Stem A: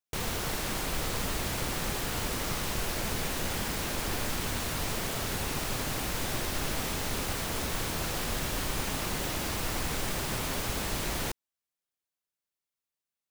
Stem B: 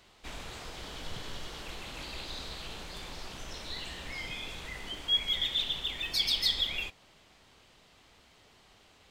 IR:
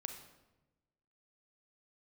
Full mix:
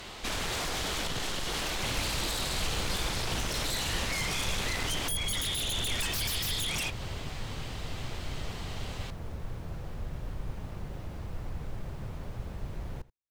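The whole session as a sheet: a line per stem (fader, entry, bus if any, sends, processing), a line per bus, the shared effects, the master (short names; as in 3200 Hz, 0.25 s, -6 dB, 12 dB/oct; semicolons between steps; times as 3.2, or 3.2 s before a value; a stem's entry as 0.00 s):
-0.5 dB, 1.70 s, no send, echo send -20.5 dB, EQ curve 120 Hz 0 dB, 170 Hz -4 dB, 270 Hz -11 dB, 510 Hz -9 dB, 9500 Hz -27 dB
-2.0 dB, 0.00 s, no send, no echo send, compressor 4:1, threshold -39 dBFS, peak gain reduction 13.5 dB; sine folder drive 15 dB, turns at -27.5 dBFS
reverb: off
echo: echo 81 ms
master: dry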